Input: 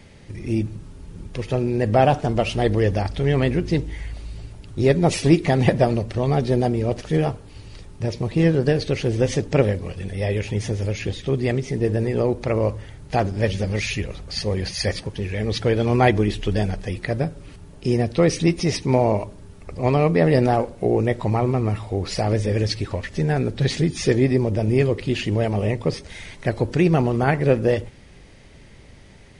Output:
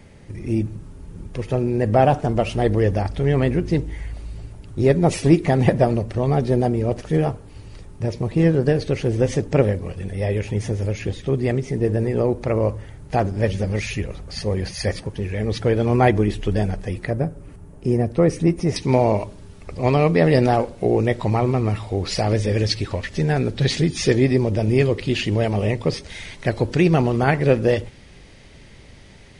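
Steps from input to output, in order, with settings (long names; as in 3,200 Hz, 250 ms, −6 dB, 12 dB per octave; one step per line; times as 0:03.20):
parametric band 3,900 Hz −6 dB 1.7 octaves, from 0:17.10 −15 dB, from 0:18.76 +3 dB
level +1 dB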